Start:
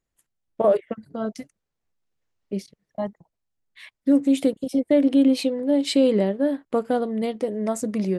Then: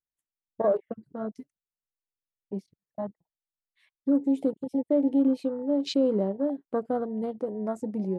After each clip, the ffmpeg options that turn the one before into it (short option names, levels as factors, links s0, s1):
-af "afwtdn=0.0251,volume=0.531"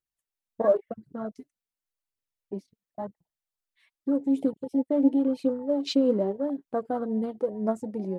-af "aphaser=in_gain=1:out_gain=1:delay=4.6:decay=0.46:speed=0.91:type=triangular"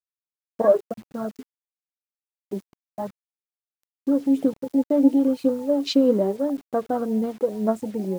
-af "acrusher=bits=8:mix=0:aa=0.000001,volume=1.68"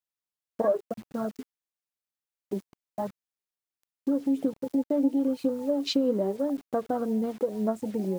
-af "acompressor=threshold=0.0447:ratio=2"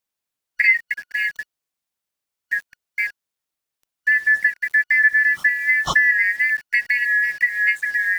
-af "afftfilt=real='real(if(lt(b,272),68*(eq(floor(b/68),0)*2+eq(floor(b/68),1)*0+eq(floor(b/68),2)*3+eq(floor(b/68),3)*1)+mod(b,68),b),0)':imag='imag(if(lt(b,272),68*(eq(floor(b/68),0)*2+eq(floor(b/68),1)*0+eq(floor(b/68),2)*3+eq(floor(b/68),3)*1)+mod(b,68),b),0)':win_size=2048:overlap=0.75,volume=2.66"